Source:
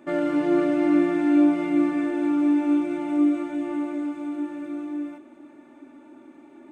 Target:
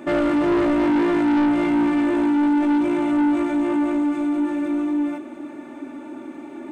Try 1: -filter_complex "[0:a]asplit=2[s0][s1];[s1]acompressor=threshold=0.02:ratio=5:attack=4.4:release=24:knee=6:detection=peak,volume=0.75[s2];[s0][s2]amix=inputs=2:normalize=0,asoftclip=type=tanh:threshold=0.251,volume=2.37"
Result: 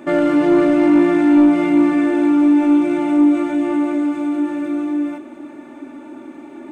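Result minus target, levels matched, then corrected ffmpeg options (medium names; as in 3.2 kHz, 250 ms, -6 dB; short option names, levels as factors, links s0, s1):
saturation: distortion -13 dB
-filter_complex "[0:a]asplit=2[s0][s1];[s1]acompressor=threshold=0.02:ratio=5:attack=4.4:release=24:knee=6:detection=peak,volume=0.75[s2];[s0][s2]amix=inputs=2:normalize=0,asoftclip=type=tanh:threshold=0.0668,volume=2.37"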